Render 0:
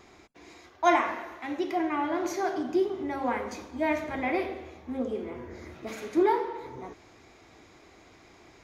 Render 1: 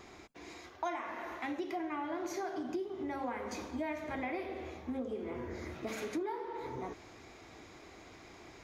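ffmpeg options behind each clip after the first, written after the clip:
-af "acompressor=threshold=-36dB:ratio=8,volume=1dB"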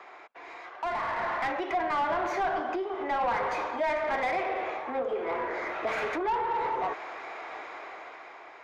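-filter_complex "[0:a]acrossover=split=500 2900:gain=0.0708 1 0.251[a][b][c];[a][b][c]amix=inputs=3:normalize=0,asplit=2[d][e];[e]highpass=f=720:p=1,volume=22dB,asoftclip=type=tanh:threshold=-25.5dB[f];[d][f]amix=inputs=2:normalize=0,lowpass=f=1.2k:p=1,volume=-6dB,dynaudnorm=f=280:g=7:m=9dB,volume=-1.5dB"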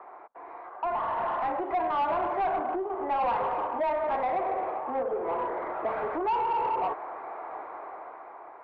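-af "lowpass=f=980:t=q:w=1.6,asoftclip=type=tanh:threshold=-21.5dB"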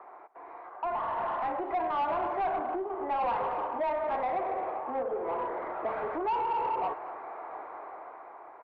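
-af "aecho=1:1:228:0.112,volume=-2.5dB"

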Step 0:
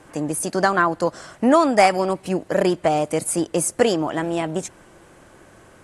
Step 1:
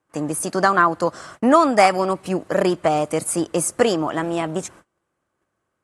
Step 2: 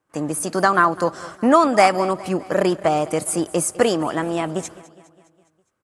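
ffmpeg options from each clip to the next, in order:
-af "agate=range=-28dB:threshold=-43dB:ratio=16:detection=peak,highpass=48,equalizer=f=1.2k:w=3.5:g=6"
-af "aecho=1:1:205|410|615|820|1025:0.106|0.0593|0.0332|0.0186|0.0104"

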